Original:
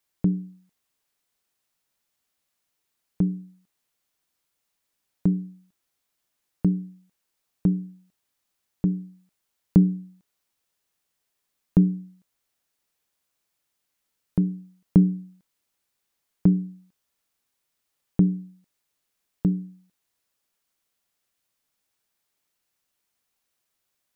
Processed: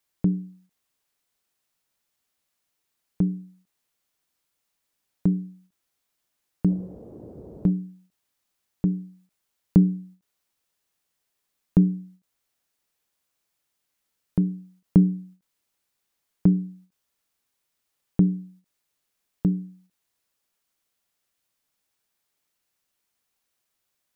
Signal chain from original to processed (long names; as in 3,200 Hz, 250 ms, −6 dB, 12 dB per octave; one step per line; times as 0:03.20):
0:06.67–0:07.69: noise in a band 51–500 Hz −43 dBFS
every ending faded ahead of time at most 280 dB per second